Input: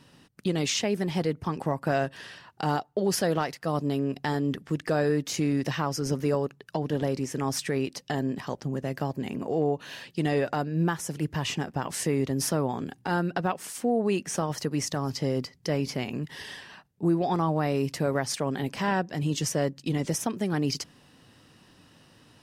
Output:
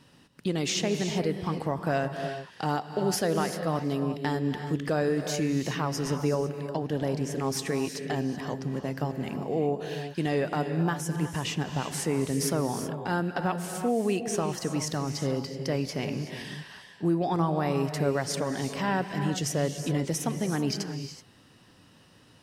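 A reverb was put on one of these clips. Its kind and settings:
reverb whose tail is shaped and stops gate 400 ms rising, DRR 7 dB
level −1.5 dB

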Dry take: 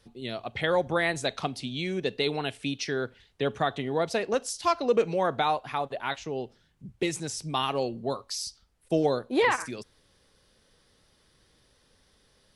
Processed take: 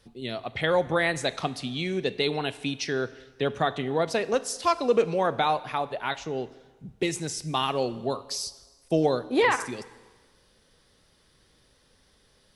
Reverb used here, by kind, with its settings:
dense smooth reverb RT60 1.4 s, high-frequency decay 0.95×, DRR 15.5 dB
level +1.5 dB

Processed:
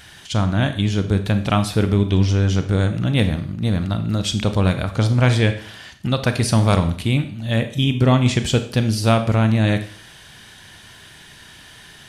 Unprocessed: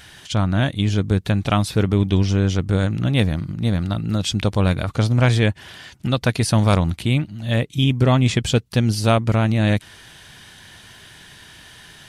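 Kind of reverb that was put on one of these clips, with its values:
four-comb reverb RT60 0.51 s, combs from 28 ms, DRR 8.5 dB

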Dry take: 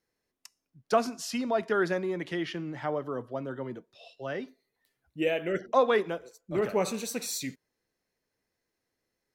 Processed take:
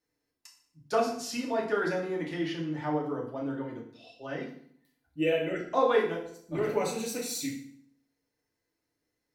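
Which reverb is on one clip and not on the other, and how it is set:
feedback delay network reverb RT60 0.6 s, low-frequency decay 1.3×, high-frequency decay 0.9×, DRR −3 dB
level −5.5 dB

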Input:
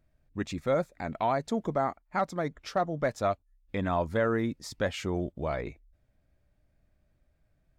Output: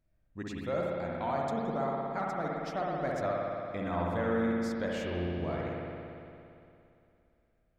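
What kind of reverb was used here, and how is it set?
spring reverb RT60 2.7 s, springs 57 ms, chirp 70 ms, DRR −3.5 dB
level −8 dB

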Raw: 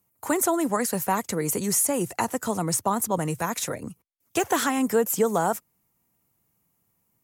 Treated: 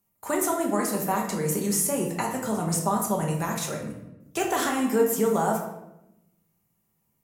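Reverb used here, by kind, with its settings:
rectangular room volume 290 cubic metres, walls mixed, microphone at 1.2 metres
level −4.5 dB

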